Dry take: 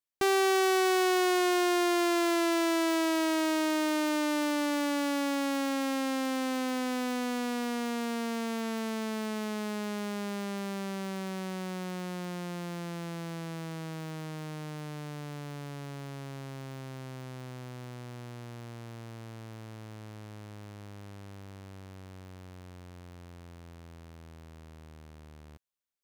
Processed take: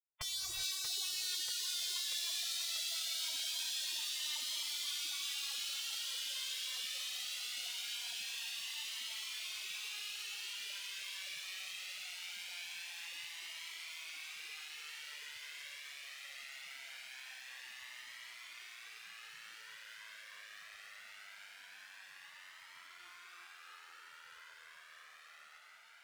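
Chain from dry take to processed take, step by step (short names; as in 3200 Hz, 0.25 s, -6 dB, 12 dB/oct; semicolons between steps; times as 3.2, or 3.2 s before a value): high shelf 3300 Hz -10.5 dB; spectral gate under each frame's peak -25 dB weak; 22.99–23.47 comb 5.6 ms, depth 93%; thinning echo 0.637 s, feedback 84%, high-pass 200 Hz, level -7 dB; non-linear reverb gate 0.43 s rising, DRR 3 dB; cascading flanger rising 0.22 Hz; gain +9 dB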